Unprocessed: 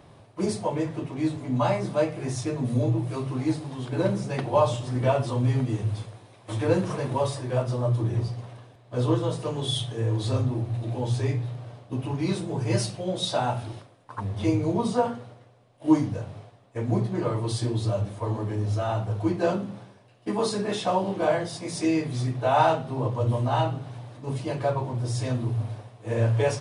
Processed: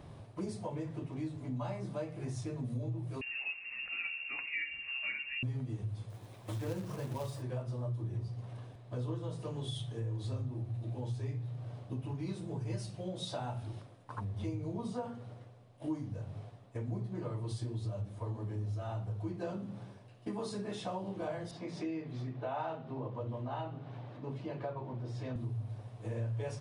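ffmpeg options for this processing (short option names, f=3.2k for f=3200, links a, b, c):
-filter_complex "[0:a]asettb=1/sr,asplit=3[a][b][c];[a]atrim=end=3.214[d];[b]atrim=start=3.21:end=5.43,asetpts=PTS-STARTPTS,afade=t=in:d=0.004:c=qsin,afade=t=out:st=2.216:d=0.004:c=qsin,lowpass=f=2.5k:t=q:w=0.5098,lowpass=f=2.5k:t=q:w=0.6013,lowpass=f=2.5k:t=q:w=0.9,lowpass=f=2.5k:t=q:w=2.563,afreqshift=-2900[e];[c]atrim=start=5.426[f];[d][e]acrossfade=d=0.004:c1=hsin:c2=qsin[g];[g][f]acrossfade=d=0.004:c1=qsin:c2=hsin,asplit=3[h][i][j];[h]afade=t=out:st=6.09:d=0.02[k];[i]acrusher=bits=3:mode=log:mix=0:aa=0.000001,afade=t=in:st=6.09:d=0.02,afade=t=out:st=7.41:d=0.02[l];[j]afade=t=in:st=7.41:d=0.02[m];[k][l][m]amix=inputs=3:normalize=0,asettb=1/sr,asplit=3[n][o][p];[n]atrim=end=21.514[q];[o]atrim=start=21.51:end=25.36,asetpts=PTS-STARTPTS,afade=t=in:d=0.004:c=qsin,afade=t=out:st=3.846:d=0.004:c=qsin,highpass=180,lowpass=3.3k[r];[p]atrim=start=25.356[s];[q][r]acrossfade=d=0.004:c1=hsin:c2=qsin[t];[t][s]acrossfade=d=0.004:c1=qsin:c2=hsin,lowshelf=f=210:g=8.5,acompressor=threshold=-36dB:ratio=3,volume=-4dB"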